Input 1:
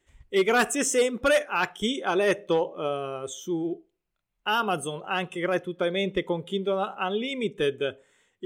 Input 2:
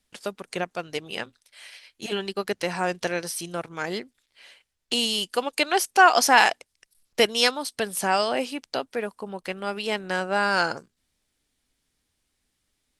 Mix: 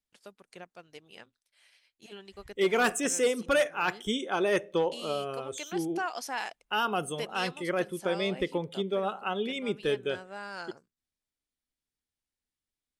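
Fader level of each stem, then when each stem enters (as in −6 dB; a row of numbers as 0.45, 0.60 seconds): −3.5, −18.0 decibels; 2.25, 0.00 seconds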